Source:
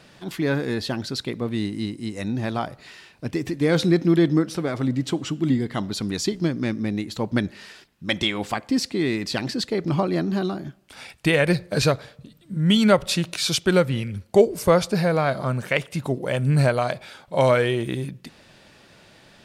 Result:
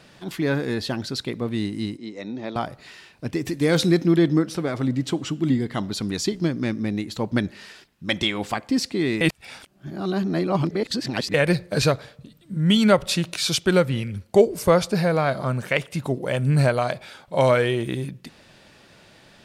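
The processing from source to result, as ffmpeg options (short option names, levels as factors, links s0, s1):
-filter_complex "[0:a]asettb=1/sr,asplit=3[s0][s1][s2];[s0]atrim=end=1.974[s3];[s1]atrim=start=1.97:end=2.56,asetpts=PTS-STARTPTS,afade=t=in:d=0.004:c=qsin,afade=t=out:st=0.586:d=0.004:c=qsin,highpass=290,equalizer=f=760:t=q:w=4:g=-4,equalizer=f=1100:t=q:w=4:g=-4,equalizer=f=1600:t=q:w=4:g=-9,equalizer=f=2800:t=q:w=4:g=-8,equalizer=f=4800:t=q:w=4:g=-6,lowpass=f=5200:w=0.5412,lowpass=f=5200:w=1.3066[s4];[s2]atrim=start=2.556[s5];[s3][s4]acrossfade=d=0.004:c1=hsin:c2=qsin[s6];[s6][s5]acrossfade=d=0.004:c1=qsin:c2=hsin,asettb=1/sr,asplit=3[s7][s8][s9];[s7]atrim=end=3.454[s10];[s8]atrim=start=3.45:end=4.04,asetpts=PTS-STARTPTS,afade=t=in:d=0.004:c=qsin,afade=t=out:st=0.586:d=0.004:c=qsin,highshelf=f=4900:g=8[s11];[s9]atrim=start=4.036[s12];[s10][s11]acrossfade=d=0.004:c1=hsin:c2=qsin[s13];[s13][s12]acrossfade=d=0.004:c1=qsin:c2=hsin,asplit=3[s14][s15][s16];[s14]atrim=end=9.212[s17];[s15]atrim=start=9.208:end=11.342,asetpts=PTS-STARTPTS,areverse[s18];[s16]atrim=start=11.338[s19];[s17][s18]acrossfade=d=0.004:c1=hsin:c2=hsin[s20];[s20][s19]acrossfade=d=0.004:c1=hsin:c2=hsin"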